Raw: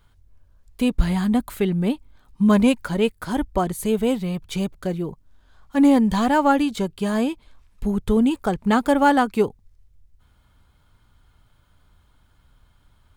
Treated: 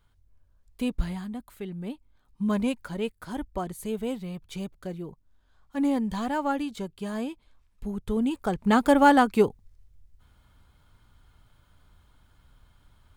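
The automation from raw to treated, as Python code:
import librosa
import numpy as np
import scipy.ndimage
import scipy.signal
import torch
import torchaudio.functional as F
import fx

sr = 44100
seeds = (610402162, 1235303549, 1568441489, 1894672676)

y = fx.gain(x, sr, db=fx.line((0.98, -8.0), (1.35, -17.0), (2.42, -10.0), (8.02, -10.0), (8.86, -1.0)))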